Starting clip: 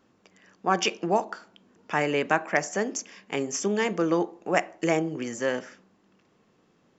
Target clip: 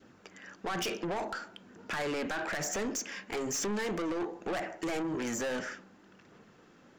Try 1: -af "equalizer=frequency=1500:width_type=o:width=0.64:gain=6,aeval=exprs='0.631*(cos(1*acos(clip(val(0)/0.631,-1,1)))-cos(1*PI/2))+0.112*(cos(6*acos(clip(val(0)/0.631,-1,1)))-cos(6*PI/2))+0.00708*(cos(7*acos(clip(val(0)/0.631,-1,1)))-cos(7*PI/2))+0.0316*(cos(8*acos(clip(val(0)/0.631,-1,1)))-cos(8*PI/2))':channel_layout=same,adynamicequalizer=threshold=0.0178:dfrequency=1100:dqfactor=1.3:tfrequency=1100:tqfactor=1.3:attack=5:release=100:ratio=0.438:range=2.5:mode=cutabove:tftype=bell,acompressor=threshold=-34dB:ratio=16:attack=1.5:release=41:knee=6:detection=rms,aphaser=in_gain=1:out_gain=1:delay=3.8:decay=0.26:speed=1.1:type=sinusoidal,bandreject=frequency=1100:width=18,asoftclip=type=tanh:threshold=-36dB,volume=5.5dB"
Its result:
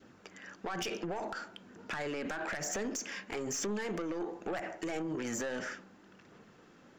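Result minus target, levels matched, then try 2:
downward compressor: peak gain reduction +8.5 dB
-af "equalizer=frequency=1500:width_type=o:width=0.64:gain=6,aeval=exprs='0.631*(cos(1*acos(clip(val(0)/0.631,-1,1)))-cos(1*PI/2))+0.112*(cos(6*acos(clip(val(0)/0.631,-1,1)))-cos(6*PI/2))+0.00708*(cos(7*acos(clip(val(0)/0.631,-1,1)))-cos(7*PI/2))+0.0316*(cos(8*acos(clip(val(0)/0.631,-1,1)))-cos(8*PI/2))':channel_layout=same,adynamicequalizer=threshold=0.0178:dfrequency=1100:dqfactor=1.3:tfrequency=1100:tqfactor=1.3:attack=5:release=100:ratio=0.438:range=2.5:mode=cutabove:tftype=bell,acompressor=threshold=-25dB:ratio=16:attack=1.5:release=41:knee=6:detection=rms,aphaser=in_gain=1:out_gain=1:delay=3.8:decay=0.26:speed=1.1:type=sinusoidal,bandreject=frequency=1100:width=18,asoftclip=type=tanh:threshold=-36dB,volume=5.5dB"

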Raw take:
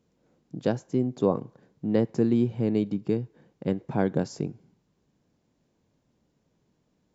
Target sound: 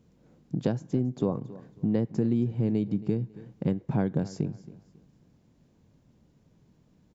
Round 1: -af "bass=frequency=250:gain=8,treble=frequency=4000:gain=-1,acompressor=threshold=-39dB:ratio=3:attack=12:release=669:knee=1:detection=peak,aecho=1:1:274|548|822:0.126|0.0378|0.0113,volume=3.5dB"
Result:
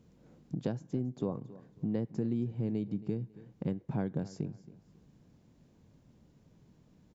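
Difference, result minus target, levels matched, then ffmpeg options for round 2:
downward compressor: peak gain reduction +7 dB
-af "bass=frequency=250:gain=8,treble=frequency=4000:gain=-1,acompressor=threshold=-28.5dB:ratio=3:attack=12:release=669:knee=1:detection=peak,aecho=1:1:274|548|822:0.126|0.0378|0.0113,volume=3.5dB"

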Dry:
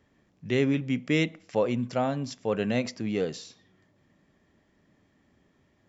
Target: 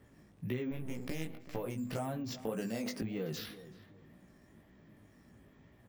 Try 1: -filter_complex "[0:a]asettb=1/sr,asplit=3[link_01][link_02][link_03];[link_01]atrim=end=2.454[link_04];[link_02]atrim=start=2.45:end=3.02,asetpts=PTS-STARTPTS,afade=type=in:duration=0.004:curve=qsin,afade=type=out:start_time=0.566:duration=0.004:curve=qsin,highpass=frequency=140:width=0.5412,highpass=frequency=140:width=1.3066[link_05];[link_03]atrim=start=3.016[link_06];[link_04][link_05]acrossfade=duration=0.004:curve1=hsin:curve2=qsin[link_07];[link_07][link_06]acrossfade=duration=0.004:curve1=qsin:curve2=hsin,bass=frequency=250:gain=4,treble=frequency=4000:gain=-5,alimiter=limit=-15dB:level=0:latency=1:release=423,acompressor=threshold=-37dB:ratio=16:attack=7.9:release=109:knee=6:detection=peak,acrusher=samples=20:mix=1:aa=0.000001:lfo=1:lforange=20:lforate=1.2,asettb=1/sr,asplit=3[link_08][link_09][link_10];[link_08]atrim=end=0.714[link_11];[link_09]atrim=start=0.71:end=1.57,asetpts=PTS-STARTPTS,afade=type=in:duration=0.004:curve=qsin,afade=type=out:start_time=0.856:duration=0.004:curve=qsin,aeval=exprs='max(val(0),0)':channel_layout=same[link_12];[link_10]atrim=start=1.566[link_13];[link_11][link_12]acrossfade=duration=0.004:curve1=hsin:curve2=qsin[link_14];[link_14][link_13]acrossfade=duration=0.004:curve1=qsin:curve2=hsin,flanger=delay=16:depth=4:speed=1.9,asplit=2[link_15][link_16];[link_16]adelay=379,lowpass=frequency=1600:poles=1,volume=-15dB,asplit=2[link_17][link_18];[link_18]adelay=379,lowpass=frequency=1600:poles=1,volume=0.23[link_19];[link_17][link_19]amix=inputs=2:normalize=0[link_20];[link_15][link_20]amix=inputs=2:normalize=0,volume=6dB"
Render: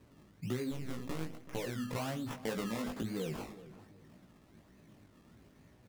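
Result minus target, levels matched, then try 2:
sample-and-hold swept by an LFO: distortion +10 dB
-filter_complex "[0:a]asettb=1/sr,asplit=3[link_01][link_02][link_03];[link_01]atrim=end=2.454[link_04];[link_02]atrim=start=2.45:end=3.02,asetpts=PTS-STARTPTS,afade=type=in:duration=0.004:curve=qsin,afade=type=out:start_time=0.566:duration=0.004:curve=qsin,highpass=frequency=140:width=0.5412,highpass=frequency=140:width=1.3066[link_05];[link_03]atrim=start=3.016[link_06];[link_04][link_05]acrossfade=duration=0.004:curve1=hsin:curve2=qsin[link_07];[link_07][link_06]acrossfade=duration=0.004:curve1=qsin:curve2=hsin,bass=frequency=250:gain=4,treble=frequency=4000:gain=-5,alimiter=limit=-15dB:level=0:latency=1:release=423,acompressor=threshold=-37dB:ratio=16:attack=7.9:release=109:knee=6:detection=peak,acrusher=samples=4:mix=1:aa=0.000001:lfo=1:lforange=4:lforate=1.2,asettb=1/sr,asplit=3[link_08][link_09][link_10];[link_08]atrim=end=0.714[link_11];[link_09]atrim=start=0.71:end=1.57,asetpts=PTS-STARTPTS,afade=type=in:duration=0.004:curve=qsin,afade=type=out:start_time=0.856:duration=0.004:curve=qsin,aeval=exprs='max(val(0),0)':channel_layout=same[link_12];[link_10]atrim=start=1.566[link_13];[link_11][link_12]acrossfade=duration=0.004:curve1=hsin:curve2=qsin[link_14];[link_14][link_13]acrossfade=duration=0.004:curve1=qsin:curve2=hsin,flanger=delay=16:depth=4:speed=1.9,asplit=2[link_15][link_16];[link_16]adelay=379,lowpass=frequency=1600:poles=1,volume=-15dB,asplit=2[link_17][link_18];[link_18]adelay=379,lowpass=frequency=1600:poles=1,volume=0.23[link_19];[link_17][link_19]amix=inputs=2:normalize=0[link_20];[link_15][link_20]amix=inputs=2:normalize=0,volume=6dB"

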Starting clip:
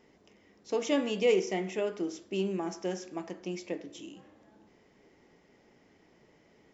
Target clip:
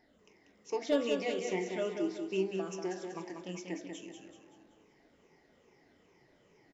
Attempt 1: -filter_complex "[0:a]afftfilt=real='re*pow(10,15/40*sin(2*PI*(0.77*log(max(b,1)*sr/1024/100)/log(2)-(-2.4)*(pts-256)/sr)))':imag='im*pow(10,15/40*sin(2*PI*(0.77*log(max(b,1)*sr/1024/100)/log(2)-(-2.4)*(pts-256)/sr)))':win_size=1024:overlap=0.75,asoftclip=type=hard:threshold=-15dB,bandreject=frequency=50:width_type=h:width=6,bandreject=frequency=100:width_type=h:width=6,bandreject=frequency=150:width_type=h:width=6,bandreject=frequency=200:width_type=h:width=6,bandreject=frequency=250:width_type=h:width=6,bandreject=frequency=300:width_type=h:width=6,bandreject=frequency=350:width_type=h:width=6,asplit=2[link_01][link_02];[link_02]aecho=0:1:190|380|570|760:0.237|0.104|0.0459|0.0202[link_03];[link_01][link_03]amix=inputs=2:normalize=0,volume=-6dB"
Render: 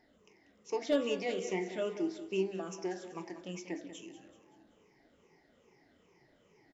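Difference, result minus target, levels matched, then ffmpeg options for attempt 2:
echo-to-direct −6.5 dB
-filter_complex "[0:a]afftfilt=real='re*pow(10,15/40*sin(2*PI*(0.77*log(max(b,1)*sr/1024/100)/log(2)-(-2.4)*(pts-256)/sr)))':imag='im*pow(10,15/40*sin(2*PI*(0.77*log(max(b,1)*sr/1024/100)/log(2)-(-2.4)*(pts-256)/sr)))':win_size=1024:overlap=0.75,asoftclip=type=hard:threshold=-15dB,bandreject=frequency=50:width_type=h:width=6,bandreject=frequency=100:width_type=h:width=6,bandreject=frequency=150:width_type=h:width=6,bandreject=frequency=200:width_type=h:width=6,bandreject=frequency=250:width_type=h:width=6,bandreject=frequency=300:width_type=h:width=6,bandreject=frequency=350:width_type=h:width=6,asplit=2[link_01][link_02];[link_02]aecho=0:1:190|380|570|760|950:0.501|0.221|0.097|0.0427|0.0188[link_03];[link_01][link_03]amix=inputs=2:normalize=0,volume=-6dB"

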